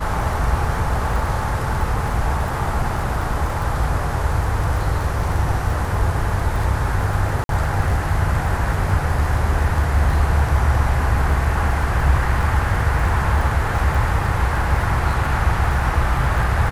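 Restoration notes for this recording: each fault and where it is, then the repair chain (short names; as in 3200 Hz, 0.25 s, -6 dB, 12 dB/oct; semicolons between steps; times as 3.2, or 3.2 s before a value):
crackle 22/s -25 dBFS
7.44–7.49 gap 52 ms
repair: de-click; interpolate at 7.44, 52 ms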